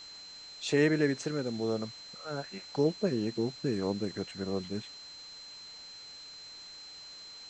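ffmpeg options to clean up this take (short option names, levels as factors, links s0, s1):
-af "bandreject=f=4100:w=30,afwtdn=0.0025"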